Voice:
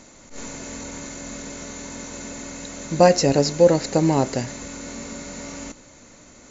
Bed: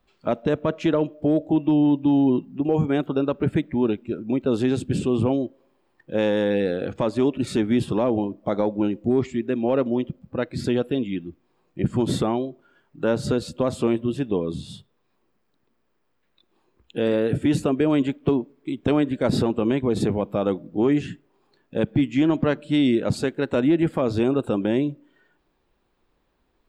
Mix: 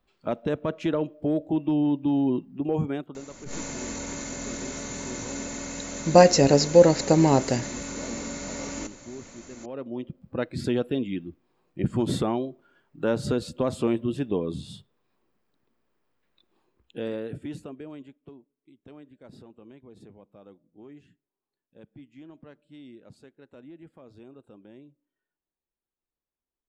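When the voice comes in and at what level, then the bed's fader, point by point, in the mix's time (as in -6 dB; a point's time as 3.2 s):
3.15 s, 0.0 dB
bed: 2.85 s -5 dB
3.24 s -20 dB
9.55 s -20 dB
10.27 s -3 dB
16.57 s -3 dB
18.36 s -27.5 dB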